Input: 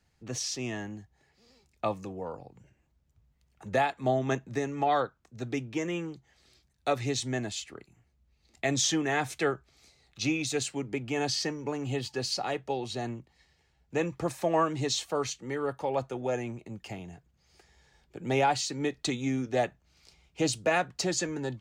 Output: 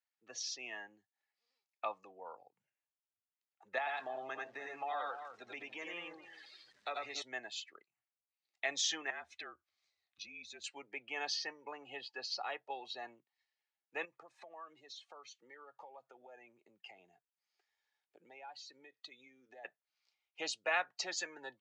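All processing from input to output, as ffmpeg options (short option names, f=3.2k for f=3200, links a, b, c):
-filter_complex "[0:a]asettb=1/sr,asplit=3[a][b][c];[a]atrim=end=3.784[d];[b]atrim=start=3.78:end=7.22,asetpts=PTS-STARTPTS,afade=t=in:d=0.004:c=qsin,afade=t=out:st=3.436:d=0.004:c=qsin,aeval=exprs='val(0)+0.5*0.0075*sgn(val(0))':c=same,aecho=1:1:82|92|293:0.422|0.708|0.178,atrim=end_sample=151704,acompressor=threshold=-28dB:ratio=3:attack=3.2:release=140:knee=1:detection=peak[e];[c]atrim=start=7.216[f];[d][e]acrossfade=d=0.004:c1=hsin:c2=qsin[g];[g][f]acrossfade=d=0.004:c1=qsin:c2=hsin,asettb=1/sr,asplit=3[h][i][j];[h]atrim=end=9.104[k];[i]atrim=start=9.1:end=10.64,asetpts=PTS-STARTPTS,afade=t=in:d=0.004:c=qsin,afade=t=out:st=1.536:d=0.004:c=qsin,equalizer=f=130:w=0.91:g=13.5,acompressor=threshold=-35dB:ratio=4:attack=3.2:release=140:knee=1:detection=peak,afreqshift=-51[l];[j]atrim=start=10.636[m];[k][l]acrossfade=d=0.004:c1=hsin:c2=qsin[n];[n][m]acrossfade=d=0.004:c1=qsin:c2=hsin,asettb=1/sr,asplit=3[o][p][q];[o]atrim=end=11.364[r];[p]atrim=start=11.36:end=12.72,asetpts=PTS-STARTPTS,afade=t=in:d=0.004:c=qsin,afade=t=out:st=1.356:d=0.004:c=qsin,highpass=50,highshelf=f=5k:g=-5[s];[q]atrim=start=12.716[t];[r][s]acrossfade=d=0.004:c1=hsin:c2=qsin[u];[u][t]acrossfade=d=0.004:c1=qsin:c2=hsin,asettb=1/sr,asplit=3[v][w][x];[v]atrim=end=14.054[y];[w]atrim=start=14.05:end=19.65,asetpts=PTS-STARTPTS,afade=t=in:d=0.004:c=qsin,afade=t=out:st=5.596:d=0.004:c=qsin,acompressor=threshold=-39dB:ratio=8:attack=3.2:release=140:knee=1:detection=peak,highshelf=f=12k:g=3[z];[x]atrim=start=19.646[aa];[y][z]acrossfade=d=0.004:c1=hsin:c2=qsin[ab];[ab][aa]acrossfade=d=0.004:c1=qsin:c2=hsin,lowpass=5.1k,afftdn=nr=16:nf=-45,highpass=940,volume=-3dB"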